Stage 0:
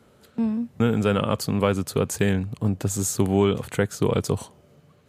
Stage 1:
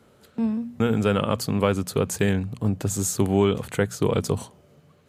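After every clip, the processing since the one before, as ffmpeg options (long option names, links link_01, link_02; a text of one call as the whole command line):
ffmpeg -i in.wav -af "bandreject=frequency=60:width_type=h:width=6,bandreject=frequency=120:width_type=h:width=6,bandreject=frequency=180:width_type=h:width=6,bandreject=frequency=240:width_type=h:width=6" out.wav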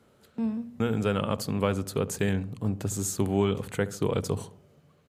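ffmpeg -i in.wav -filter_complex "[0:a]asplit=2[link_01][link_02];[link_02]adelay=71,lowpass=frequency=940:poles=1,volume=-14dB,asplit=2[link_03][link_04];[link_04]adelay=71,lowpass=frequency=940:poles=1,volume=0.5,asplit=2[link_05][link_06];[link_06]adelay=71,lowpass=frequency=940:poles=1,volume=0.5,asplit=2[link_07][link_08];[link_08]adelay=71,lowpass=frequency=940:poles=1,volume=0.5,asplit=2[link_09][link_10];[link_10]adelay=71,lowpass=frequency=940:poles=1,volume=0.5[link_11];[link_01][link_03][link_05][link_07][link_09][link_11]amix=inputs=6:normalize=0,volume=-5dB" out.wav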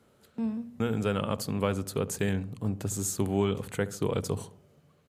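ffmpeg -i in.wav -af "equalizer=frequency=11000:width=0.67:gain=2.5,volume=-2dB" out.wav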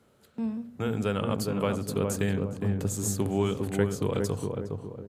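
ffmpeg -i in.wav -filter_complex "[0:a]asplit=2[link_01][link_02];[link_02]adelay=411,lowpass=frequency=890:poles=1,volume=-3dB,asplit=2[link_03][link_04];[link_04]adelay=411,lowpass=frequency=890:poles=1,volume=0.44,asplit=2[link_05][link_06];[link_06]adelay=411,lowpass=frequency=890:poles=1,volume=0.44,asplit=2[link_07][link_08];[link_08]adelay=411,lowpass=frequency=890:poles=1,volume=0.44,asplit=2[link_09][link_10];[link_10]adelay=411,lowpass=frequency=890:poles=1,volume=0.44,asplit=2[link_11][link_12];[link_12]adelay=411,lowpass=frequency=890:poles=1,volume=0.44[link_13];[link_01][link_03][link_05][link_07][link_09][link_11][link_13]amix=inputs=7:normalize=0" out.wav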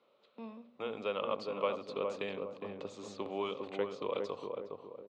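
ffmpeg -i in.wav -af "highpass=380,equalizer=frequency=550:width_type=q:width=4:gain=8,equalizer=frequency=1100:width_type=q:width=4:gain=9,equalizer=frequency=1600:width_type=q:width=4:gain=-9,equalizer=frequency=2500:width_type=q:width=4:gain=6,equalizer=frequency=3700:width_type=q:width=4:gain=6,lowpass=frequency=4400:width=0.5412,lowpass=frequency=4400:width=1.3066,volume=-7.5dB" out.wav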